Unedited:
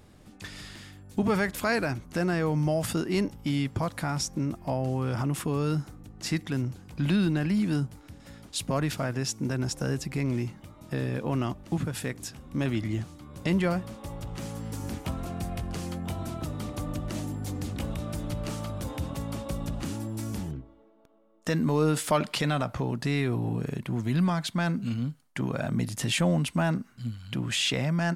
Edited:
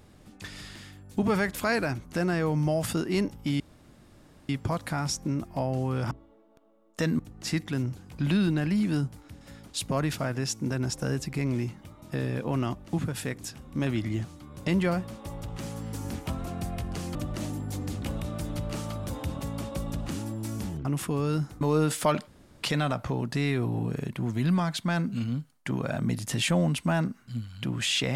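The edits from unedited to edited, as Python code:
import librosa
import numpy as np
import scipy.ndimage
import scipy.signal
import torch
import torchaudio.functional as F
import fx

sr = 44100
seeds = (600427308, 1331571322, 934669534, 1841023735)

y = fx.edit(x, sr, fx.insert_room_tone(at_s=3.6, length_s=0.89),
    fx.swap(start_s=5.22, length_s=0.76, other_s=20.59, other_length_s=1.08),
    fx.cut(start_s=15.94, length_s=0.95),
    fx.insert_room_tone(at_s=22.33, length_s=0.36), tone=tone)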